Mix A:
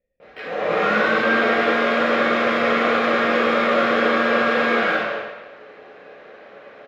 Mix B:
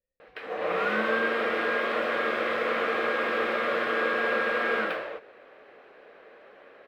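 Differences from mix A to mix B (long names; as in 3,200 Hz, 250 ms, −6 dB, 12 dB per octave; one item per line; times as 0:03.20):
speech −11.0 dB
reverb: off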